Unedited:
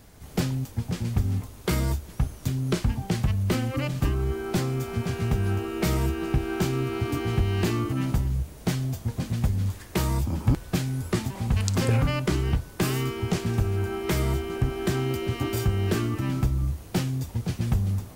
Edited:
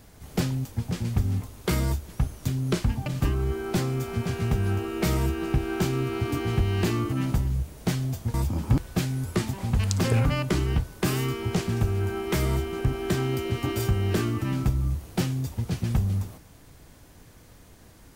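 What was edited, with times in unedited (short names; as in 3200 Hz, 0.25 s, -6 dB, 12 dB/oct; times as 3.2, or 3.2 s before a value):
3.06–3.86 cut
9.14–10.11 cut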